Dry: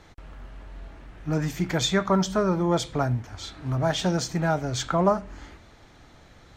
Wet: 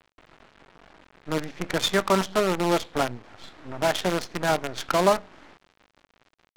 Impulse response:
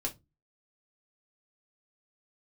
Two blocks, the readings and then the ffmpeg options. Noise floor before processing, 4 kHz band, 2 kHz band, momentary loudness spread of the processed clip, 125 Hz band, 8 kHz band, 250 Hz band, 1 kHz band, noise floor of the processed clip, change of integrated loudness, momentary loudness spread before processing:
-53 dBFS, +1.0 dB, +3.5 dB, 9 LU, -8.0 dB, -1.0 dB, -3.0 dB, +2.0 dB, -72 dBFS, 0.0 dB, 21 LU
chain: -filter_complex "[0:a]acrossover=split=210 6600:gain=0.0891 1 0.2[a][b][c];[a][b][c]amix=inputs=3:normalize=0,acrusher=bits=5:dc=4:mix=0:aa=0.000001,adynamicsmooth=sensitivity=7:basefreq=3.1k,volume=2dB"

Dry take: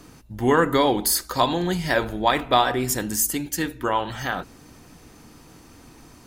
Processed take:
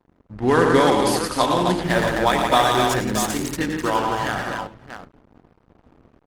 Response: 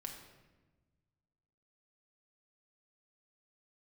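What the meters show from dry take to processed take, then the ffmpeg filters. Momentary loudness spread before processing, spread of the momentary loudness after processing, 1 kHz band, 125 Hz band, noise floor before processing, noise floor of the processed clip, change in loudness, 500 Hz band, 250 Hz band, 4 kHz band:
9 LU, 9 LU, +3.5 dB, +3.5 dB, -49 dBFS, -62 dBFS, +2.5 dB, +4.0 dB, +3.5 dB, +2.0 dB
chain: -filter_complex "[0:a]aecho=1:1:90|113|170|258|634:0.335|0.531|0.473|0.596|0.355,adynamicsmooth=sensitivity=5:basefreq=560,asplit=2[a][b];[1:a]atrim=start_sample=2205[c];[b][c]afir=irnorm=-1:irlink=0,volume=-12.5dB[d];[a][d]amix=inputs=2:normalize=0,aeval=exprs='sgn(val(0))*max(abs(val(0))-0.00631,0)':c=same" -ar 48000 -c:a libopus -b:a 20k

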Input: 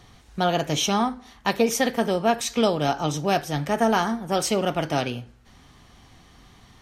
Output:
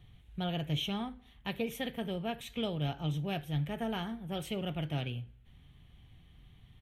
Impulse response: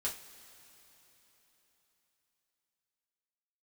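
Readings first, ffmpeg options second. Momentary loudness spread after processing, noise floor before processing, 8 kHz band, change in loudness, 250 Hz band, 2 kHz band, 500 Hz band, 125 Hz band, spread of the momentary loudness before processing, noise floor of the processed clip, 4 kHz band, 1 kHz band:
7 LU, -53 dBFS, -23.5 dB, -12.5 dB, -11.0 dB, -14.0 dB, -16.0 dB, -4.5 dB, 6 LU, -60 dBFS, -10.5 dB, -18.5 dB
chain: -af "firequalizer=gain_entry='entry(150,0);entry(220,-10);entry(1100,-18);entry(2300,-8);entry(3300,-5);entry(4900,-27);entry(11000,-10)':delay=0.05:min_phase=1,volume=-3dB"

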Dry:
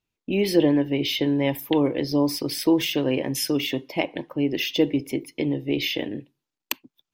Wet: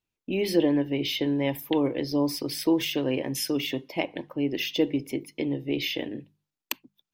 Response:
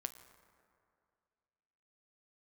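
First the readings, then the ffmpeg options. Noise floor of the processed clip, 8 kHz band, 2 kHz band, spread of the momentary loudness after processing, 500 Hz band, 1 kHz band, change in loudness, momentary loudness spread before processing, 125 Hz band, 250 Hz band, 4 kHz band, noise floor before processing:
under -85 dBFS, -3.5 dB, -3.5 dB, 9 LU, -3.5 dB, -3.5 dB, -3.5 dB, 9 LU, -4.5 dB, -3.5 dB, -3.5 dB, under -85 dBFS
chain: -af "bandreject=f=50:t=h:w=6,bandreject=f=100:t=h:w=6,bandreject=f=150:t=h:w=6,bandreject=f=200:t=h:w=6,volume=-3.5dB"

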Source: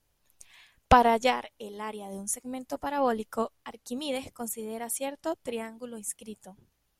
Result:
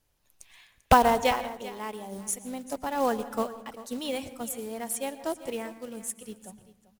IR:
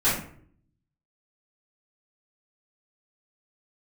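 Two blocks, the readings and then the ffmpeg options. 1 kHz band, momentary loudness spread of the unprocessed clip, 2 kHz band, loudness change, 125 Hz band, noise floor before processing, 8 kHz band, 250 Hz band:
+0.5 dB, 17 LU, +0.5 dB, +0.5 dB, +0.5 dB, -74 dBFS, +0.5 dB, +0.5 dB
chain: -filter_complex "[0:a]acrusher=bits=4:mode=log:mix=0:aa=0.000001,aecho=1:1:392:0.158,asplit=2[a][b];[1:a]atrim=start_sample=2205,adelay=104[c];[b][c]afir=irnorm=-1:irlink=0,volume=-29dB[d];[a][d]amix=inputs=2:normalize=0"

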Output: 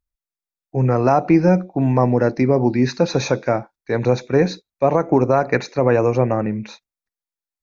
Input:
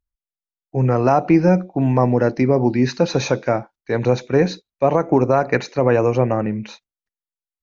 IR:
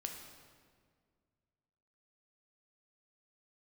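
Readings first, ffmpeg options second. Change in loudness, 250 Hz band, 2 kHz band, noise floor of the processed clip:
0.0 dB, 0.0 dB, 0.0 dB, under -85 dBFS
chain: -af "bandreject=f=3k:w=6.1"

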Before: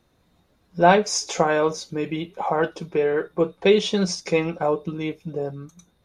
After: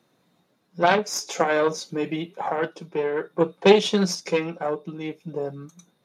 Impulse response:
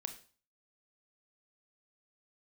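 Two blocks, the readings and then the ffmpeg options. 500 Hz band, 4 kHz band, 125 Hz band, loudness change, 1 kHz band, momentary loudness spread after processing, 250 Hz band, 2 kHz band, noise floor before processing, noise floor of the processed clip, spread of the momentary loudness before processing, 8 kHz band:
-1.5 dB, 0.0 dB, -3.0 dB, -1.5 dB, -2.5 dB, 14 LU, -1.0 dB, -0.5 dB, -64 dBFS, -68 dBFS, 12 LU, -2.5 dB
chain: -af "aeval=exprs='0.841*(cos(1*acos(clip(val(0)/0.841,-1,1)))-cos(1*PI/2))+0.266*(cos(4*acos(clip(val(0)/0.841,-1,1)))-cos(4*PI/2))+0.0473*(cos(6*acos(clip(val(0)/0.841,-1,1)))-cos(6*PI/2))+0.0211*(cos(7*acos(clip(val(0)/0.841,-1,1)))-cos(7*PI/2))':c=same,tremolo=f=0.52:d=0.46,highpass=f=140:w=0.5412,highpass=f=140:w=1.3066,volume=2dB"

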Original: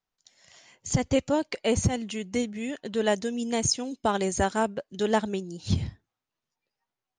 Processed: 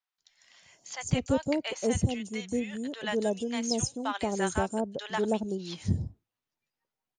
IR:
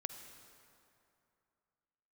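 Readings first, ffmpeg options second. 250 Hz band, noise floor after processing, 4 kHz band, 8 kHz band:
-2.0 dB, under -85 dBFS, -3.5 dB, -4.5 dB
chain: -filter_complex "[0:a]acrossover=split=780|6000[a][b][c];[c]adelay=150[d];[a]adelay=180[e];[e][b][d]amix=inputs=3:normalize=0,volume=-2dB"

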